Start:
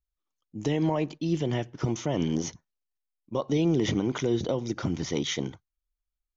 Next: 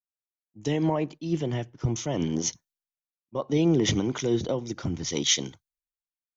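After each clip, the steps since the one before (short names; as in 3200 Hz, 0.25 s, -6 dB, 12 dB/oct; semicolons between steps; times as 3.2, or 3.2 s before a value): high shelf 4900 Hz +6.5 dB; three-band expander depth 100%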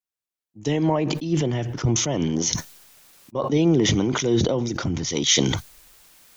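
sustainer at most 32 dB/s; gain +3.5 dB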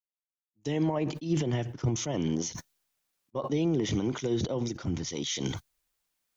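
limiter -17.5 dBFS, peak gain reduction 11.5 dB; upward expander 2.5:1, over -41 dBFS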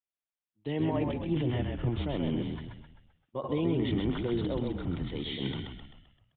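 downsampling 8000 Hz; frequency-shifting echo 0.13 s, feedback 48%, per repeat -41 Hz, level -4 dB; gain -2.5 dB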